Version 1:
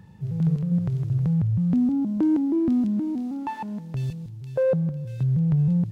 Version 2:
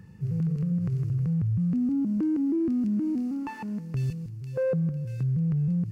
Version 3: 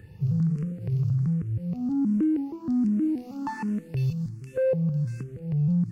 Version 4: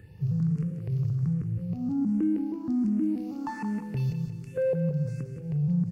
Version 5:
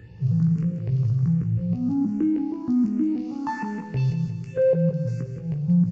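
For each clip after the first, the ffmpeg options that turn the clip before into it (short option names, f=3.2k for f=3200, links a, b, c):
-af "superequalizer=8b=0.447:9b=0.398:13b=0.398,alimiter=limit=-21.5dB:level=0:latency=1:release=70"
-filter_complex "[0:a]aeval=exprs='0.0891*(cos(1*acos(clip(val(0)/0.0891,-1,1)))-cos(1*PI/2))+0.00316*(cos(3*acos(clip(val(0)/0.0891,-1,1)))-cos(3*PI/2))':c=same,alimiter=level_in=1.5dB:limit=-24dB:level=0:latency=1:release=117,volume=-1.5dB,asplit=2[a][b];[b]afreqshift=1.3[c];[a][c]amix=inputs=2:normalize=1,volume=7.5dB"
-af "aecho=1:1:177|354|531|708|885:0.355|0.156|0.0687|0.0302|0.0133,volume=-2.5dB"
-filter_complex "[0:a]asplit=2[a][b];[b]adelay=17,volume=-6dB[c];[a][c]amix=inputs=2:normalize=0,aresample=16000,aresample=44100,volume=4dB"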